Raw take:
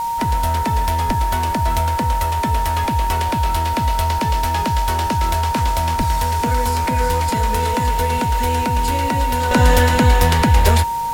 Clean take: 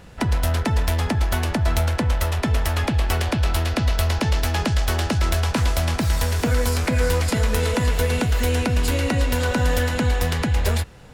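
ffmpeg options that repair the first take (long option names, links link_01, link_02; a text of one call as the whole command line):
ffmpeg -i in.wav -filter_complex "[0:a]bandreject=frequency=930:width=30,asplit=3[link_01][link_02][link_03];[link_01]afade=type=out:start_time=1.06:duration=0.02[link_04];[link_02]highpass=frequency=140:width=0.5412,highpass=frequency=140:width=1.3066,afade=type=in:start_time=1.06:duration=0.02,afade=type=out:start_time=1.18:duration=0.02[link_05];[link_03]afade=type=in:start_time=1.18:duration=0.02[link_06];[link_04][link_05][link_06]amix=inputs=3:normalize=0,asplit=3[link_07][link_08][link_09];[link_07]afade=type=out:start_time=5.97:duration=0.02[link_10];[link_08]highpass=frequency=140:width=0.5412,highpass=frequency=140:width=1.3066,afade=type=in:start_time=5.97:duration=0.02,afade=type=out:start_time=6.09:duration=0.02[link_11];[link_09]afade=type=in:start_time=6.09:duration=0.02[link_12];[link_10][link_11][link_12]amix=inputs=3:normalize=0,afwtdn=0.013,asetnsamples=nb_out_samples=441:pad=0,asendcmd='9.51 volume volume -7dB',volume=0dB" out.wav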